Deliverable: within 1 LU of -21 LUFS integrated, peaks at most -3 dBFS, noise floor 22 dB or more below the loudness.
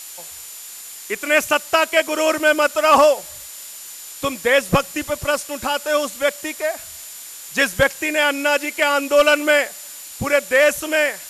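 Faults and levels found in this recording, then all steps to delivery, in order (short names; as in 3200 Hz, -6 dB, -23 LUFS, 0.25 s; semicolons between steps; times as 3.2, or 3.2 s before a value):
steady tone 7100 Hz; tone level -40 dBFS; noise floor -37 dBFS; noise floor target -40 dBFS; loudness -18.0 LUFS; peak -5.0 dBFS; loudness target -21.0 LUFS
-> notch 7100 Hz, Q 30; noise print and reduce 6 dB; gain -3 dB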